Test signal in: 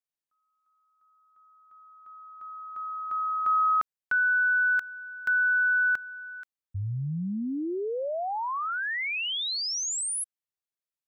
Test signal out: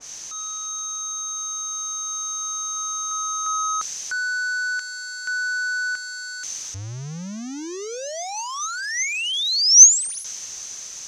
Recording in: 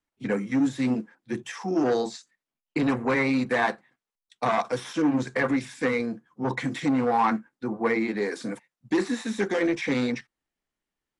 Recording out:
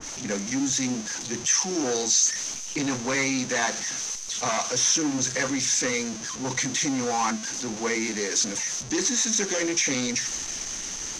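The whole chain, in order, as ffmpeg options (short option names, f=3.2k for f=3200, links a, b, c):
-af "aeval=exprs='val(0)+0.5*0.0355*sgn(val(0))':c=same,lowpass=f=6.2k:t=q:w=13,adynamicequalizer=threshold=0.0158:dfrequency=1900:dqfactor=0.7:tfrequency=1900:tqfactor=0.7:attack=5:release=100:ratio=0.375:range=3:mode=boostabove:tftype=highshelf,volume=-5.5dB"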